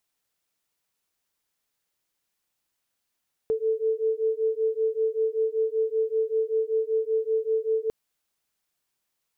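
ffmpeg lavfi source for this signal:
-f lavfi -i "aevalsrc='0.0531*(sin(2*PI*440*t)+sin(2*PI*445.2*t))':d=4.4:s=44100"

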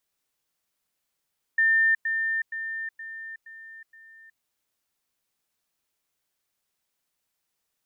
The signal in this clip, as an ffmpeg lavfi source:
-f lavfi -i "aevalsrc='pow(10,(-17.5-6*floor(t/0.47))/20)*sin(2*PI*1800*t)*clip(min(mod(t,0.47),0.37-mod(t,0.47))/0.005,0,1)':d=2.82:s=44100"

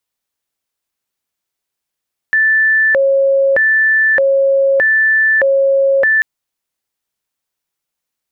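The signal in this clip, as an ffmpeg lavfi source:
-f lavfi -i "aevalsrc='0.376*sin(2*PI*(1153*t+607/0.81*(0.5-abs(mod(0.81*t,1)-0.5))))':d=3.89:s=44100"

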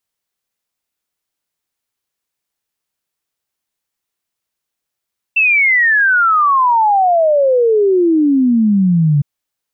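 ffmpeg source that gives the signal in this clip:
-f lavfi -i "aevalsrc='0.376*clip(min(t,3.86-t)/0.01,0,1)*sin(2*PI*2700*3.86/log(140/2700)*(exp(log(140/2700)*t/3.86)-1))':d=3.86:s=44100"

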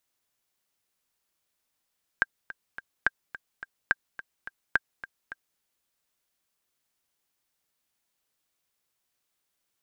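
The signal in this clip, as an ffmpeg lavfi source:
-f lavfi -i "aevalsrc='pow(10,(-8-16.5*gte(mod(t,3*60/213),60/213))/20)*sin(2*PI*1590*mod(t,60/213))*exp(-6.91*mod(t,60/213)/0.03)':d=3.38:s=44100"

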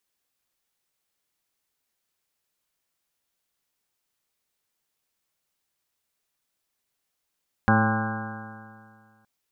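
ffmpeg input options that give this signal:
-f lavfi -i "aevalsrc='0.0891*pow(10,-3*t/2.06)*sin(2*PI*108.1*t)+0.112*pow(10,-3*t/2.06)*sin(2*PI*216.82*t)+0.0266*pow(10,-3*t/2.06)*sin(2*PI*326.76*t)+0.02*pow(10,-3*t/2.06)*sin(2*PI*438.52*t)+0.0355*pow(10,-3*t/2.06)*sin(2*PI*552.68*t)+0.01*pow(10,-3*t/2.06)*sin(2*PI*669.8*t)+0.0794*pow(10,-3*t/2.06)*sin(2*PI*790.41*t)+0.02*pow(10,-3*t/2.06)*sin(2*PI*915.02*t)+0.0447*pow(10,-3*t/2.06)*sin(2*PI*1044.12*t)+0.0299*pow(10,-3*t/2.06)*sin(2*PI*1178.14*t)+0.0282*pow(10,-3*t/2.06)*sin(2*PI*1317.5*t)+0.0531*pow(10,-3*t/2.06)*sin(2*PI*1462.59*t)+0.0596*pow(10,-3*t/2.06)*sin(2*PI*1613.75*t)':d=1.57:s=44100"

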